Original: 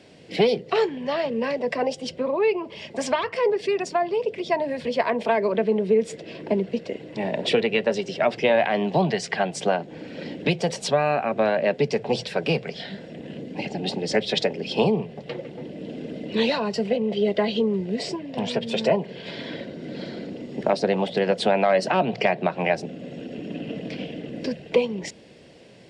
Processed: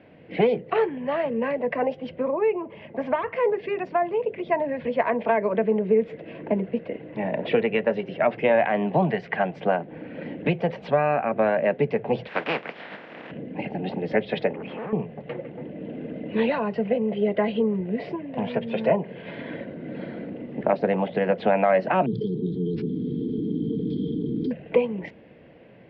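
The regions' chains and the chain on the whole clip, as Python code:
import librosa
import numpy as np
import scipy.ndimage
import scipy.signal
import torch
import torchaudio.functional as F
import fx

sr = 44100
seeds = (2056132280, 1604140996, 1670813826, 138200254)

y = fx.chain(x, sr, fx.highpass(hz=63.0, slope=12),
    fx.high_shelf(hz=2200.0, db=-8.0), at=(2.3, 3.28))
y = fx.spec_flatten(y, sr, power=0.36, at=(12.27, 13.3), fade=0.02)
y = fx.highpass(y, sr, hz=240.0, slope=12, at=(12.27, 13.3), fade=0.02)
y = fx.chain(y, sr, fx.tube_stage(drive_db=31.0, bias=0.65),
    fx.bandpass_edges(low_hz=160.0, high_hz=2500.0),
    fx.env_flatten(amount_pct=70), at=(14.53, 14.93))
y = fx.chain(y, sr, fx.brickwall_bandstop(low_hz=470.0, high_hz=3100.0),
    fx.resample_bad(factor=4, down='none', up='filtered'),
    fx.env_flatten(amount_pct=70), at=(22.06, 24.51))
y = scipy.signal.sosfilt(scipy.signal.butter(4, 2400.0, 'lowpass', fs=sr, output='sos'), y)
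y = fx.notch(y, sr, hz=390.0, q=12.0)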